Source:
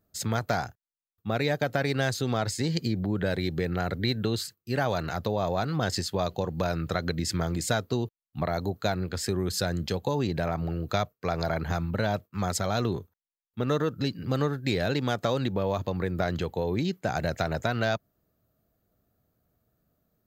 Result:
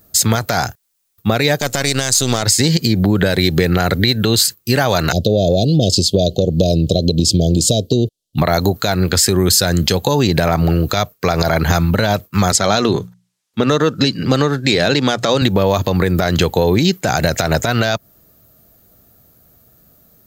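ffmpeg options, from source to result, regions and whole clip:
-filter_complex "[0:a]asettb=1/sr,asplit=3[a][b][c];[a]atrim=end=1.594[d];[b]atrim=start=1.59:end=2.43,asetpts=PTS-STARTPTS,afade=t=in:d=0.004:c=qsin,afade=t=out:st=0.836:d=0.004:c=qsin,aeval=exprs='if(lt(val(0),0),0.447*val(0),val(0))':c=same,equalizer=f=7.4k:w=0.91:g=13[e];[c]atrim=start=2.426[f];[d][e]acrossfade=d=0.004:c1=hsin:c2=qsin[g];[g][f]acrossfade=d=0.004:c1=qsin:c2=hsin,asettb=1/sr,asplit=3[h][i][j];[h]atrim=end=5.124[k];[i]atrim=start=5.12:end=8.38,asetpts=PTS-STARTPTS,afade=t=in:d=0.004:c=qsin,afade=t=out:st=3.256:d=0.004:c=qsin,asuperstop=centerf=1400:order=12:qfactor=0.59,aemphasis=mode=reproduction:type=50fm[l];[j]atrim=start=8.376[m];[k][l]acrossfade=d=0.004:c1=hsin:c2=qsin[n];[n][m]acrossfade=d=0.004:c1=qsin:c2=hsin,asettb=1/sr,asplit=3[o][p][q];[o]atrim=end=12.524[r];[p]atrim=start=12.52:end=15.42,asetpts=PTS-STARTPTS,afade=t=in:d=0.004:c=qsin,afade=t=out:st=2.896:d=0.004:c=qsin,highpass=130,lowpass=7.6k,bandreject=f=60:t=h:w=6,bandreject=f=120:t=h:w=6,bandreject=f=180:t=h:w=6[s];[q]atrim=start=15.416[t];[r][s]acrossfade=d=0.004:c1=hsin:c2=qsin[u];[u][t]acrossfade=d=0.004:c1=qsin:c2=hsin,highshelf=f=3.8k:g=11.5,acompressor=threshold=-27dB:ratio=6,alimiter=level_in=19dB:limit=-1dB:release=50:level=0:latency=1,volume=-1dB"

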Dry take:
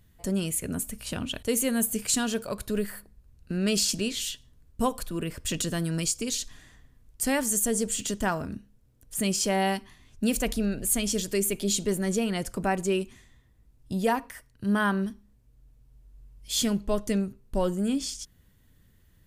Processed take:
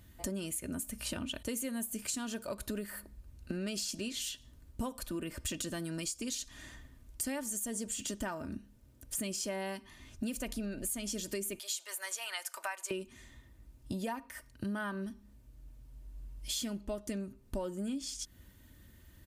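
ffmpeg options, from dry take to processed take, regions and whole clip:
-filter_complex "[0:a]asettb=1/sr,asplit=3[a][b][c];[a]atrim=end=11.594[d];[b]atrim=start=11.59:end=12.91,asetpts=PTS-STARTPTS,afade=t=in:d=0.004:c=qsin,afade=t=out:st=1.316:d=0.004:c=qsin,highpass=f=850:w=0.5412,highpass=f=850:w=1.3066,equalizer=f=13k:w=4.2:g=6[e];[c]atrim=start=12.906[f];[d][e]acrossfade=d=0.004:c1=hsin:c2=qsin[g];[g][f]acrossfade=d=0.004:c1=qsin:c2=hsin,highpass=41,aecho=1:1:3.3:0.45,acompressor=threshold=-40dB:ratio=6,volume=4dB"

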